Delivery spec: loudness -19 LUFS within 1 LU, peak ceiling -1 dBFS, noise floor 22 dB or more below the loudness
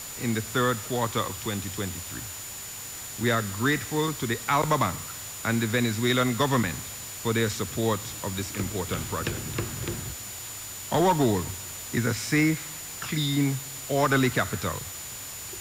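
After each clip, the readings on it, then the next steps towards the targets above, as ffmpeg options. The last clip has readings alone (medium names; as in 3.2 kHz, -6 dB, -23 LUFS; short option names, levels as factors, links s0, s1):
steady tone 7 kHz; tone level -40 dBFS; noise floor -38 dBFS; noise floor target -50 dBFS; loudness -27.5 LUFS; peak level -13.5 dBFS; loudness target -19.0 LUFS
-> -af "bandreject=f=7000:w=30"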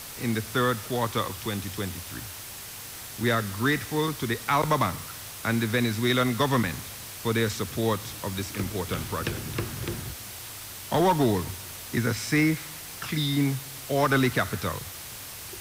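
steady tone not found; noise floor -40 dBFS; noise floor target -50 dBFS
-> -af "afftdn=nr=10:nf=-40"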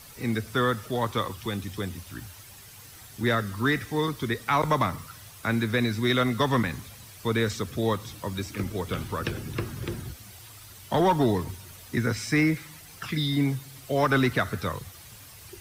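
noise floor -48 dBFS; noise floor target -50 dBFS
-> -af "afftdn=nr=6:nf=-48"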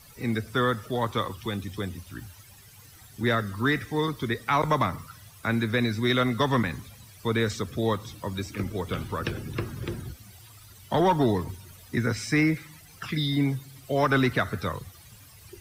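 noise floor -51 dBFS; loudness -27.5 LUFS; peak level -14.0 dBFS; loudness target -19.0 LUFS
-> -af "volume=2.66"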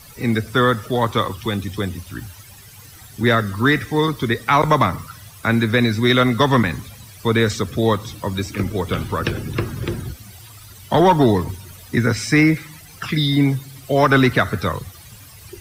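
loudness -19.0 LUFS; peak level -5.5 dBFS; noise floor -43 dBFS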